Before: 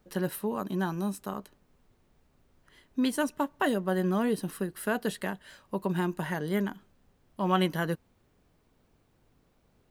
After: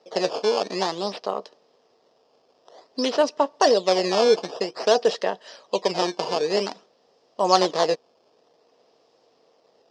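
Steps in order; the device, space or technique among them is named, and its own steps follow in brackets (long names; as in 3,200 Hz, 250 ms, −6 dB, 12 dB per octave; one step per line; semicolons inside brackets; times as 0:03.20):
circuit-bent sampling toy (sample-and-hold swept by an LFO 13×, swing 160% 0.52 Hz; loudspeaker in its box 470–5,900 Hz, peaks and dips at 470 Hz +10 dB, 670 Hz +6 dB, 1,500 Hz −9 dB, 2,200 Hz −7 dB, 5,100 Hz +10 dB)
level +9 dB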